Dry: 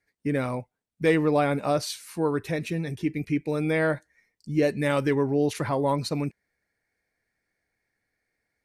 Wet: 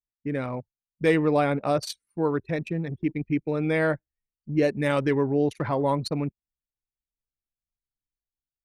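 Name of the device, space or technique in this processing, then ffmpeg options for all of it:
voice memo with heavy noise removal: -af "anlmdn=15.8,dynaudnorm=f=220:g=5:m=1.58,volume=0.668"

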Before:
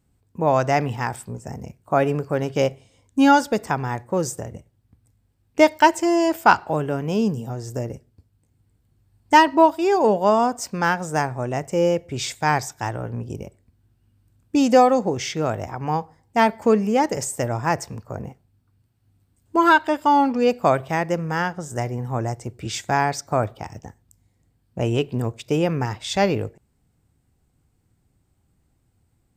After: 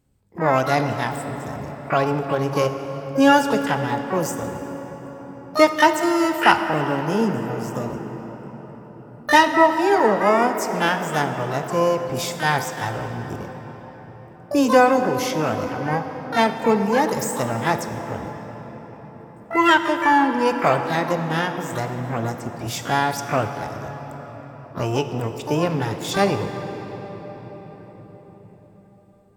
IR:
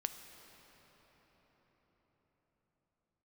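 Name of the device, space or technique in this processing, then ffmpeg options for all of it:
shimmer-style reverb: -filter_complex "[0:a]asettb=1/sr,asplit=3[s0][s1][s2];[s0]atrim=end=7.844[s3];[s1]atrim=start=7.84:end=9.58,asetpts=PTS-STARTPTS,afade=t=in:d=0.004:c=qsin,afade=t=out:st=1.736:d=0.004:c=qsin,asplit=2[s4][s5];[s5]adelay=17,volume=0.316[s6];[s4][s6]amix=inputs=2:normalize=0,atrim=end_sample=76734[s7];[s2]atrim=start=9.576[s8];[s3][s7]acrossfade=d=0.004:c1=hsin:c2=qsin[s9];[s9][s8]acrossfade=d=0.004:c1=qsin:c2=hsin,asplit=2[s10][s11];[s11]asetrate=88200,aresample=44100,atempo=0.5,volume=0.447[s12];[s10][s12]amix=inputs=2:normalize=0[s13];[1:a]atrim=start_sample=2205[s14];[s13][s14]afir=irnorm=-1:irlink=0"

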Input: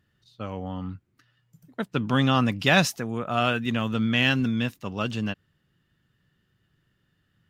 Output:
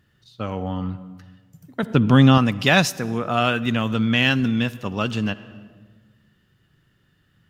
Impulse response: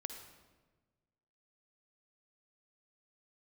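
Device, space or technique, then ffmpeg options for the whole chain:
ducked reverb: -filter_complex "[0:a]asplit=3[s0][s1][s2];[1:a]atrim=start_sample=2205[s3];[s1][s3]afir=irnorm=-1:irlink=0[s4];[s2]apad=whole_len=330738[s5];[s4][s5]sidechaincompress=threshold=0.0398:ratio=8:attack=7.5:release=440,volume=1.06[s6];[s0][s6]amix=inputs=2:normalize=0,asettb=1/sr,asplit=3[s7][s8][s9];[s7]atrim=end=1.834[s10];[s8]atrim=start=1.83:end=2.38,asetpts=PTS-STARTPTS,afade=t=in:d=0.004:c=qsin,afade=t=out:st=0.546:d=0.004:c=qsin,lowshelf=f=400:g=8[s11];[s9]atrim=start=2.376[s12];[s10][s11]acrossfade=d=0.004:c1=hsin:c2=qsin[s13];[s13][s12]acrossfade=d=0.004:c1=qsin:c2=hsin,volume=1.26"

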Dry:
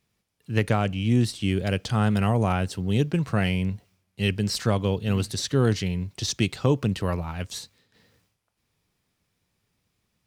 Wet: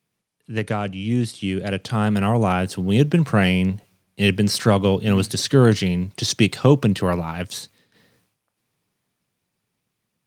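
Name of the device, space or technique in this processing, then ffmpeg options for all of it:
video call: -af "highpass=f=110:w=0.5412,highpass=f=110:w=1.3066,dynaudnorm=f=230:g=21:m=3.55" -ar 48000 -c:a libopus -b:a 32k

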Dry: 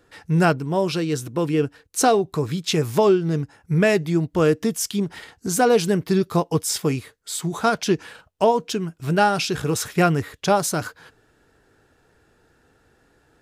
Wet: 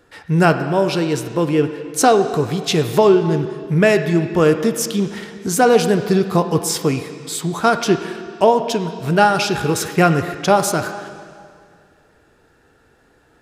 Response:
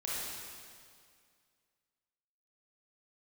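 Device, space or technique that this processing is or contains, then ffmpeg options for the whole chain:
filtered reverb send: -filter_complex "[0:a]asplit=2[s0][s1];[s1]highpass=180,lowpass=4200[s2];[1:a]atrim=start_sample=2205[s3];[s2][s3]afir=irnorm=-1:irlink=0,volume=0.316[s4];[s0][s4]amix=inputs=2:normalize=0,volume=1.41"

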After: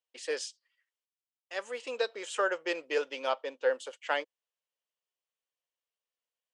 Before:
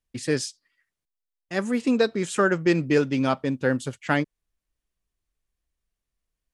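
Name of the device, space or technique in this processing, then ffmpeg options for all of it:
phone speaker on a table: -filter_complex "[0:a]highpass=f=480:w=0.5412,highpass=f=480:w=1.3066,equalizer=f=510:t=q:w=4:g=8,equalizer=f=930:t=q:w=4:g=4,equalizer=f=3000:t=q:w=4:g=8,lowpass=f=8800:w=0.5412,lowpass=f=8800:w=1.3066,asettb=1/sr,asplit=3[s0][s1][s2];[s0]atrim=end=0.474[s3];[s1]atrim=start=0.47:end=2.1,asetpts=PTS-STARTPTS,afade=t=in:d=0.004:c=qsin,afade=t=out:st=1.626:d=0.004:c=qsin,equalizer=f=470:t=o:w=2.7:g=-3.5[s4];[s2]atrim=start=2.096[s5];[s3][s4]acrossfade=d=0.004:c1=hsin:c2=qsin[s6];[s6][s5]acrossfade=d=0.004:c1=qsin:c2=hsin,asettb=1/sr,asplit=3[s7][s8][s9];[s7]atrim=end=3.304[s10];[s8]atrim=start=3.3:end=3.74,asetpts=PTS-STARTPTS,afade=t=in:d=0.004:c=qsin,afade=t=out:st=0.436:d=0.004:c=qsin,lowpass=f=7200:w=0.5412,lowpass=f=7200:w=1.3066[s11];[s9]atrim=start=3.736[s12];[s10][s11]acrossfade=d=0.004:c1=hsin:c2=qsin[s13];[s13][s12]acrossfade=d=0.004:c1=qsin:c2=hsin,volume=0.422"

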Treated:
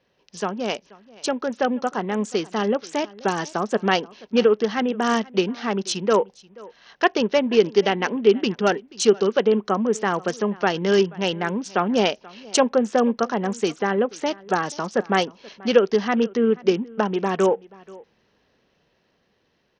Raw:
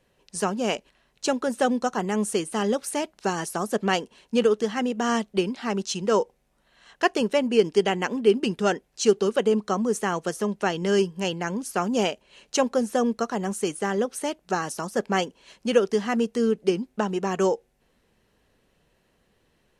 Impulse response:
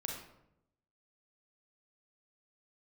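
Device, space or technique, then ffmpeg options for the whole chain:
Bluetooth headset: -filter_complex "[0:a]asettb=1/sr,asplit=3[s0][s1][s2];[s0]atrim=end=11.074[s3];[s1]atrim=start=11.07:end=12.08,asetpts=PTS-STARTPTS,afade=t=in:d=0.004:c=qsin,afade=t=out:st=1.006:d=0.004:c=qsin,lowpass=f=6800:w=0.5412,lowpass=f=6800:w=1.3066[s4];[s2]atrim=start=12.076[s5];[s3][s4]acrossfade=d=0.004:c1=hsin:c2=qsin[s6];[s6][s5]acrossfade=d=0.004:c1=qsin:c2=hsin,highpass=f=140:p=1,aecho=1:1:482:0.075,dynaudnorm=f=680:g=7:m=1.88,aresample=16000,aresample=44100" -ar 48000 -c:a sbc -b:a 64k

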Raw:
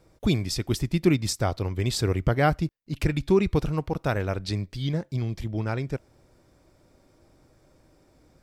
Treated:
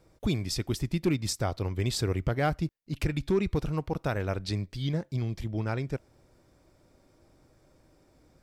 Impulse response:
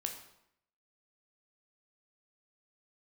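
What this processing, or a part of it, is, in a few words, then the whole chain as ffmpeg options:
clipper into limiter: -af "asoftclip=type=hard:threshold=0.237,alimiter=limit=0.168:level=0:latency=1:release=197,volume=0.75"

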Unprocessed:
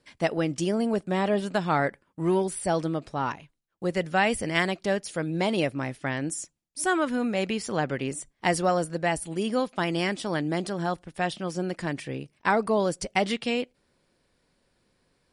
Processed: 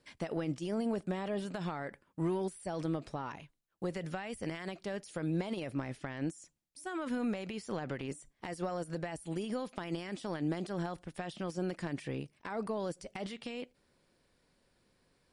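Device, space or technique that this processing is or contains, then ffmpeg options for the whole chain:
de-esser from a sidechain: -filter_complex "[0:a]asplit=2[s0][s1];[s1]highpass=f=5800:p=1,apad=whole_len=676013[s2];[s0][s2]sidechaincompress=threshold=0.00316:ratio=6:attack=3.8:release=36,asettb=1/sr,asplit=3[s3][s4][s5];[s3]atrim=end=5.814[s6];[s4]atrim=start=5.81:end=6.42,asetpts=PTS-STARTPTS,afade=t=in:d=0.004:c=qsin,afade=t=out:st=0.606:d=0.004:c=qsin,lowpass=9300[s7];[s5]atrim=start=6.416[s8];[s6][s7]acrossfade=d=0.004:c1=hsin:c2=qsin[s9];[s9][s8]acrossfade=d=0.004:c1=qsin:c2=hsin,volume=0.75"

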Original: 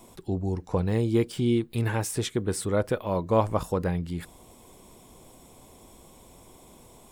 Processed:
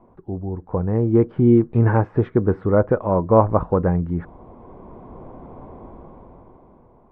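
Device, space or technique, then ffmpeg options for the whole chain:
action camera in a waterproof case: -af "lowpass=f=1400:w=0.5412,lowpass=f=1400:w=1.3066,dynaudnorm=f=210:g=11:m=5.31" -ar 48000 -c:a aac -b:a 64k

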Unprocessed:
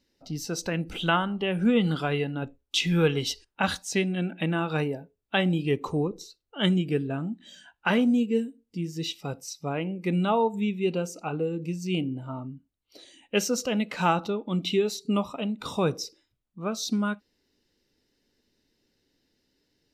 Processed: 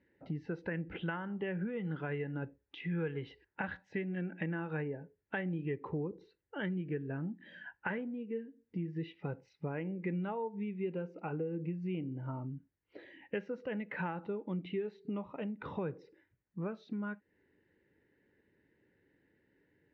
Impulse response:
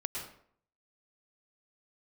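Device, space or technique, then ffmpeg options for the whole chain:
bass amplifier: -af "acompressor=threshold=0.0126:ratio=5,highpass=82,equalizer=f=240:t=q:w=4:g=-7,equalizer=f=690:t=q:w=4:g=-8,equalizer=f=1200:t=q:w=4:g=-10,equalizer=f=1800:t=q:w=4:g=7,lowpass=f=2000:w=0.5412,lowpass=f=2000:w=1.3066,volume=1.58"

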